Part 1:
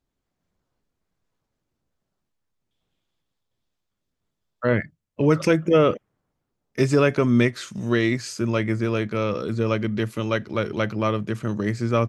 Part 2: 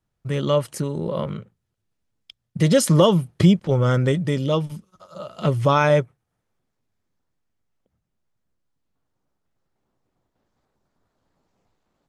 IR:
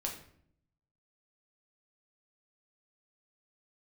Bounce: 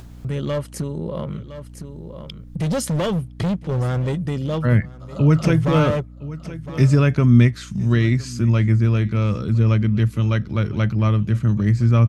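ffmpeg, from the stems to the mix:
-filter_complex "[0:a]asubboost=boost=7:cutoff=160,volume=-1.5dB,asplit=2[a][b];[b]volume=-21.5dB[c];[1:a]lowshelf=f=290:g=6,volume=13.5dB,asoftclip=hard,volume=-13.5dB,volume=-5dB,asplit=2[d][e];[e]volume=-21dB[f];[c][f]amix=inputs=2:normalize=0,aecho=0:1:1011:1[g];[a][d][g]amix=inputs=3:normalize=0,acompressor=mode=upward:threshold=-23dB:ratio=2.5,aeval=exprs='val(0)+0.0112*(sin(2*PI*60*n/s)+sin(2*PI*2*60*n/s)/2+sin(2*PI*3*60*n/s)/3+sin(2*PI*4*60*n/s)/4+sin(2*PI*5*60*n/s)/5)':c=same"

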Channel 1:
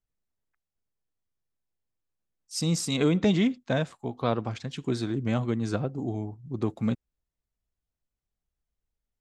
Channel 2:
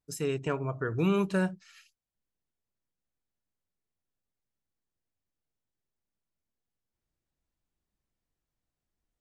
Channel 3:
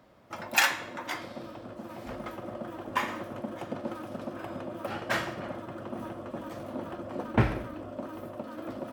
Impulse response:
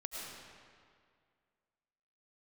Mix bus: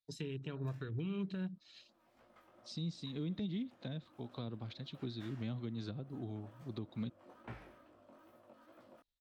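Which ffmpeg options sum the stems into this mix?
-filter_complex "[0:a]adelay=150,volume=-11dB[a];[1:a]afwtdn=0.00794,crystalizer=i=6.5:c=0,volume=-3.5dB,asplit=2[b][c];[2:a]lowshelf=f=450:g=-10,flanger=delay=16.5:depth=5.8:speed=2.3,adelay=100,volume=-15dB[d];[c]apad=whole_len=397897[e];[d][e]sidechaincompress=threshold=-38dB:ratio=8:attack=9.2:release=1440[f];[a][b]amix=inputs=2:normalize=0,lowpass=f=3.9k:t=q:w=5.8,alimiter=limit=-22.5dB:level=0:latency=1:release=87,volume=0dB[g];[f][g]amix=inputs=2:normalize=0,acrossover=split=320[h][i];[i]acompressor=threshold=-48dB:ratio=10[j];[h][j]amix=inputs=2:normalize=0,alimiter=level_in=7dB:limit=-24dB:level=0:latency=1:release=398,volume=-7dB"

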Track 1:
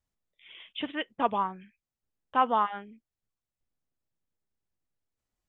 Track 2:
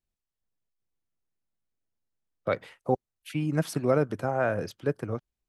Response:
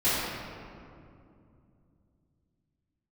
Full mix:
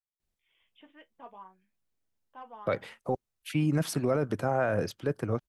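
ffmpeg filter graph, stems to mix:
-filter_complex "[0:a]flanger=delay=8.9:depth=5.8:regen=-45:speed=0.57:shape=triangular,asplit=2[a][b];[b]highpass=f=720:p=1,volume=10dB,asoftclip=type=tanh:threshold=-15dB[c];[a][c]amix=inputs=2:normalize=0,lowpass=f=1.1k:p=1,volume=-6dB,bandreject=f=1.3k:w=15,volume=-17dB[d];[1:a]adelay=200,volume=2.5dB[e];[d][e]amix=inputs=2:normalize=0,alimiter=limit=-18dB:level=0:latency=1:release=12"

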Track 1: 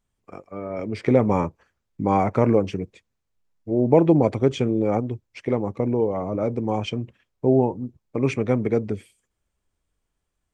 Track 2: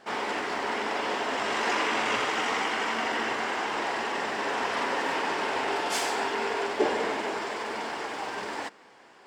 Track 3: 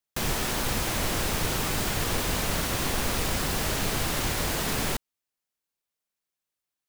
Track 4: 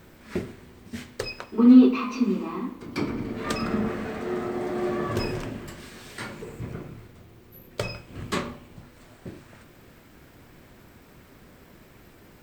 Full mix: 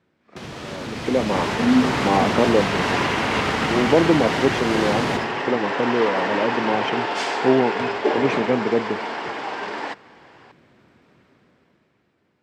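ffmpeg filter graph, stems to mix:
-filter_complex "[0:a]highpass=180,volume=-10dB[a];[1:a]adelay=1250,volume=-7dB[b];[2:a]acrossover=split=420[c][d];[d]acompressor=threshold=-31dB:ratio=6[e];[c][e]amix=inputs=2:normalize=0,alimiter=limit=-21.5dB:level=0:latency=1:release=180,adelay=200,volume=-1.5dB,asplit=2[f][g];[g]volume=-8.5dB[h];[3:a]volume=-15dB[i];[h]aecho=0:1:73|146|219|292|365|438:1|0.46|0.212|0.0973|0.0448|0.0206[j];[a][b][f][i][j]amix=inputs=5:normalize=0,dynaudnorm=f=130:g=17:m=12.5dB,highpass=120,lowpass=4.4k"

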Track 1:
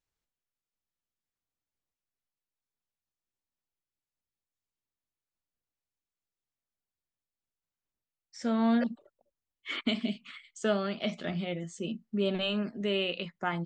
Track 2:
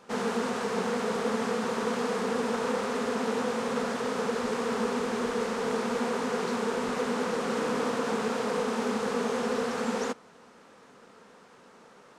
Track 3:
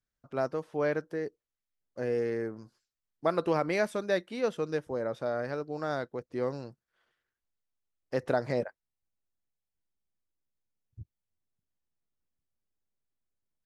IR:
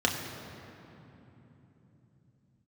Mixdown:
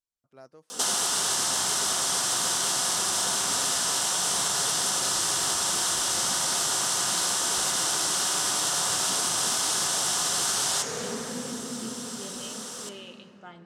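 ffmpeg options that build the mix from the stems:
-filter_complex "[0:a]volume=-16dB,asplit=2[a][b];[b]volume=-18.5dB[c];[1:a]acrossover=split=350[d][e];[e]acompressor=threshold=-31dB:ratio=6[f];[d][f]amix=inputs=2:normalize=0,crystalizer=i=5:c=0,adelay=700,volume=2.5dB,asplit=2[g][h];[h]volume=-10dB[i];[2:a]volume=-19dB[j];[3:a]atrim=start_sample=2205[k];[c][i]amix=inputs=2:normalize=0[l];[l][k]afir=irnorm=-1:irlink=0[m];[a][g][j][m]amix=inputs=4:normalize=0,equalizer=f=8.5k:t=o:w=1.9:g=12,afftfilt=real='re*lt(hypot(re,im),0.282)':imag='im*lt(hypot(re,im),0.282)':win_size=1024:overlap=0.75,acompressor=threshold=-26dB:ratio=2.5"

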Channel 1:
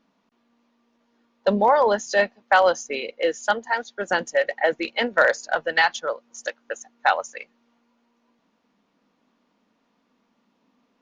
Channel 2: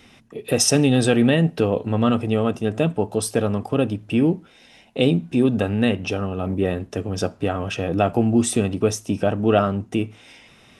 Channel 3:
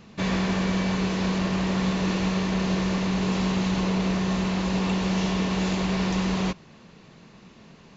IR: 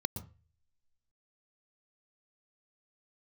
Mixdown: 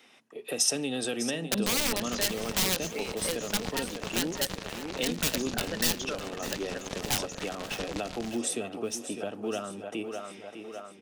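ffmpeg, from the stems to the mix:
-filter_complex "[0:a]aeval=exprs='(mod(4.22*val(0)+1,2)-1)/4.22':c=same,adelay=50,volume=-5dB,asplit=2[a][b];[b]volume=-17dB[c];[1:a]highpass=380,volume=-6dB,asplit=3[d][e][f];[e]volume=-11dB[g];[2:a]acrusher=bits=2:mix=0:aa=0.5,adelay=1800,volume=-1dB[h];[f]apad=whole_len=488093[i];[a][i]sidechaingate=range=-19dB:threshold=-45dB:ratio=16:detection=peak[j];[c][g]amix=inputs=2:normalize=0,aecho=0:1:603|1206|1809|2412|3015|3618|4221|4824:1|0.52|0.27|0.141|0.0731|0.038|0.0198|0.0103[k];[j][d][h][k]amix=inputs=4:normalize=0,acrossover=split=280|3000[l][m][n];[m]acompressor=threshold=-34dB:ratio=6[o];[l][o][n]amix=inputs=3:normalize=0"

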